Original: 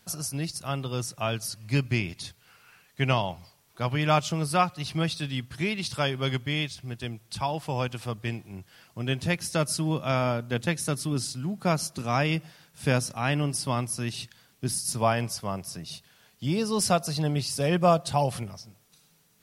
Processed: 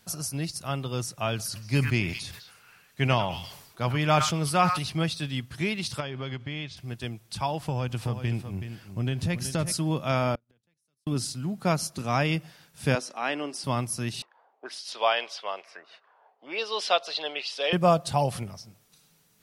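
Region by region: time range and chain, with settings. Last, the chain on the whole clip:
1.35–4.9 delay with a stepping band-pass 0.103 s, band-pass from 1500 Hz, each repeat 1.4 oct, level -9 dB + sustainer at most 62 dB/s
6–6.77 LPF 4300 Hz + compressor, threshold -29 dBFS
7.6–9.72 low shelf 230 Hz +9 dB + compressor, threshold -23 dBFS + echo 0.374 s -9.5 dB
10.35–11.07 level quantiser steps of 10 dB + flipped gate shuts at -32 dBFS, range -36 dB + three-band expander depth 70%
12.95–13.64 HPF 290 Hz 24 dB/oct + air absorption 64 m
14.22–17.73 HPF 450 Hz 24 dB/oct + envelope low-pass 730–3400 Hz up, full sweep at -31 dBFS
whole clip: dry

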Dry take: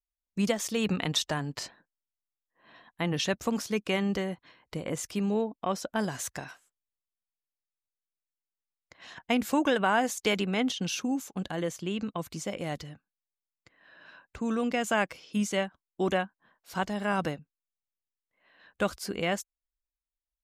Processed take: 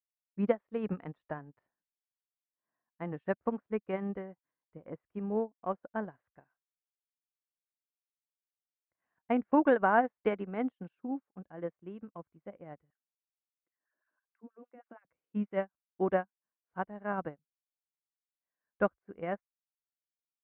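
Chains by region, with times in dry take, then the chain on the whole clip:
12.9–15.05 compressor 5:1, threshold -36 dBFS + LFO high-pass sine 6.3 Hz 220–2100 Hz
whole clip: LPF 1800 Hz 24 dB/oct; dynamic EQ 560 Hz, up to +3 dB, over -40 dBFS, Q 0.73; upward expander 2.5:1, over -43 dBFS

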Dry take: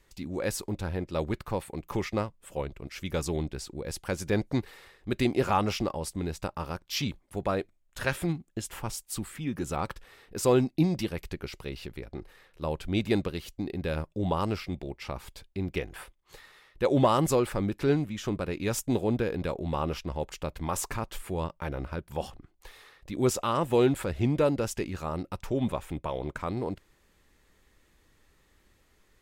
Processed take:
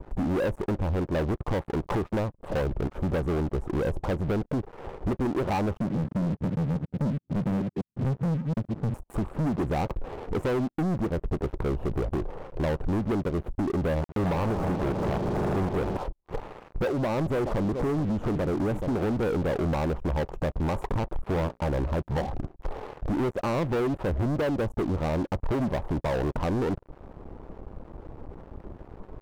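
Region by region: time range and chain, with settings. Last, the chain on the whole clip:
5.77–8.94 reverse delay 0.12 s, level -11 dB + Butterworth band-pass 170 Hz, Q 1.2
14.01–15.97 compressor 4:1, threshold -32 dBFS + companded quantiser 2-bit + swelling echo 80 ms, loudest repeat 5, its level -18 dB
16.91–19.23 compressor 4:1, threshold -33 dBFS + echo 0.426 s -15.5 dB
21.17–21.63 notches 60/120/180/240/300/360/420/480/540 Hz + upward expander, over -49 dBFS
whole clip: inverse Chebyshev low-pass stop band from 1800 Hz, stop band 40 dB; compressor 10:1, threshold -41 dBFS; sample leveller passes 5; gain +7 dB

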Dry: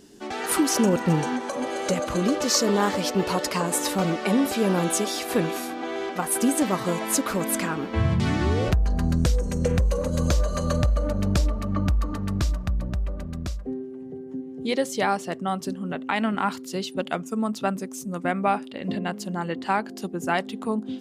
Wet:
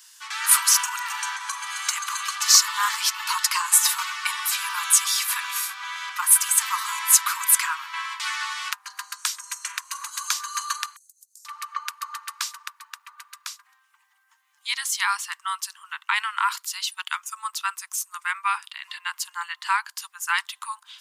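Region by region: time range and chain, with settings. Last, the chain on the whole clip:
10.96–11.45 inverse Chebyshev high-pass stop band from 2800 Hz, stop band 50 dB + compressor 4:1, threshold -59 dBFS
whole clip: steep high-pass 940 Hz 96 dB/oct; high shelf 6800 Hz +9 dB; gain +4.5 dB

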